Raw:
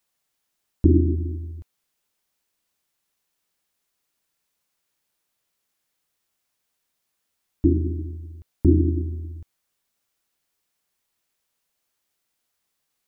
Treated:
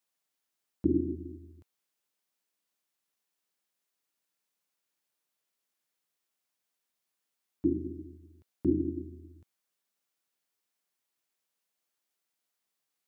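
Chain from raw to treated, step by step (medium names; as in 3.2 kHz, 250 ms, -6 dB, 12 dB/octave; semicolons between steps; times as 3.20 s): high-pass 160 Hz 12 dB/octave; trim -7.5 dB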